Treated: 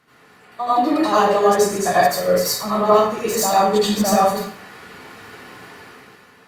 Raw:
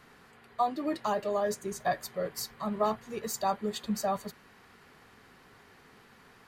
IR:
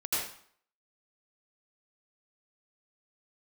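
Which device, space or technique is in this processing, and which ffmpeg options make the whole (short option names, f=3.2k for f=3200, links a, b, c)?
far-field microphone of a smart speaker: -filter_complex "[1:a]atrim=start_sample=2205[a];[0:a][a]afir=irnorm=-1:irlink=0,highpass=93,dynaudnorm=f=210:g=7:m=11.5dB" -ar 48000 -c:a libopus -b:a 48k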